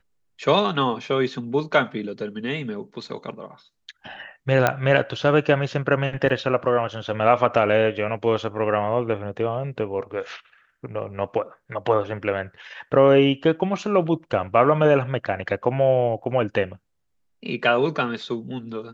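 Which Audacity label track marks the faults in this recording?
4.670000	4.670000	pop -5 dBFS
6.290000	6.300000	gap 5.7 ms
16.230000	16.240000	gap 7.1 ms

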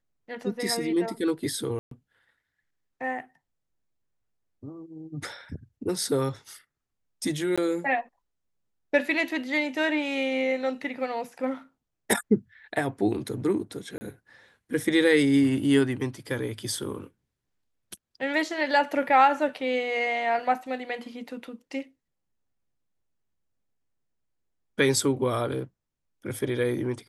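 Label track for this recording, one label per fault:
1.790000	1.910000	gap 0.123 s
7.560000	7.580000	gap 16 ms
13.980000	14.010000	gap 30 ms

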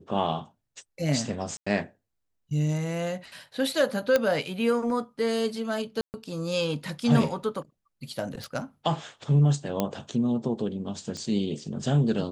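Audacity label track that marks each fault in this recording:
1.570000	1.670000	gap 95 ms
4.160000	4.160000	pop -9 dBFS
6.010000	6.140000	gap 0.129 s
8.440000	8.440000	pop
9.800000	9.800000	pop -11 dBFS
11.170000	11.170000	pop -24 dBFS

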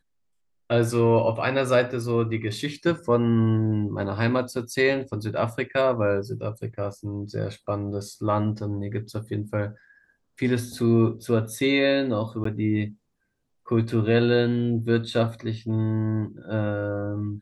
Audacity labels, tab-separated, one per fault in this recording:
12.440000	12.450000	gap 14 ms

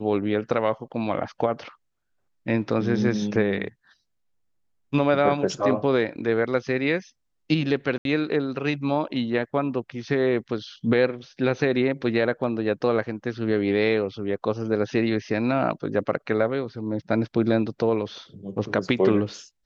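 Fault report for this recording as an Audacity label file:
7.980000	8.050000	gap 72 ms

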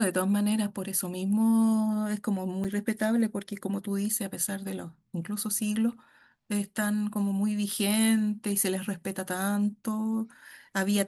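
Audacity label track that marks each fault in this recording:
2.640000	2.650000	gap 6.1 ms

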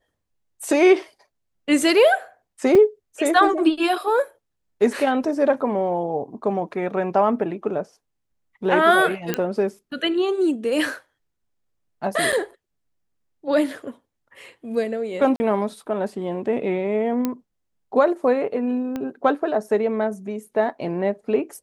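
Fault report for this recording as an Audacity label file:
2.750000	2.750000	gap 3.2 ms
9.340000	9.340000	pop -7 dBFS
12.320000	12.330000	gap 6.6 ms
15.360000	15.400000	gap 40 ms
17.250000	17.250000	pop -10 dBFS
18.960000	18.960000	pop -16 dBFS

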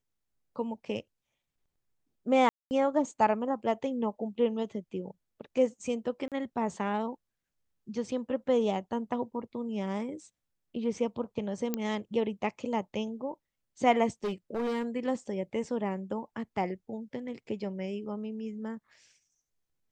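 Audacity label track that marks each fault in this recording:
2.490000	2.710000	gap 0.219 s
6.280000	6.320000	gap 37 ms
11.740000	11.740000	pop -16 dBFS
14.240000	14.850000	clipped -28 dBFS

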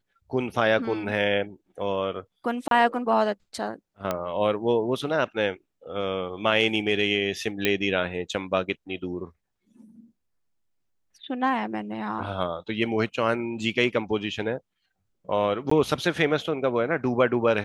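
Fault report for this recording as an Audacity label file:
2.680000	2.710000	gap 32 ms
4.110000	4.110000	pop -12 dBFS
7.650000	7.650000	pop -7 dBFS
15.700000	15.710000	gap 14 ms

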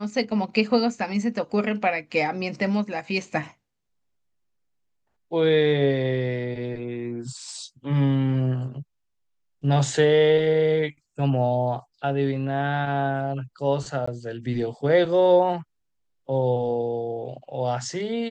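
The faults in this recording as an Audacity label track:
14.060000	14.070000	gap 15 ms

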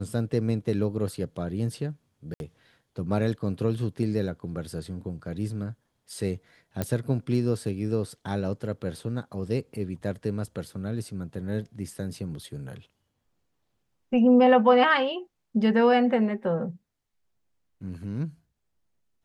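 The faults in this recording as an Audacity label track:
2.340000	2.400000	gap 61 ms
6.820000	6.820000	pop -13 dBFS

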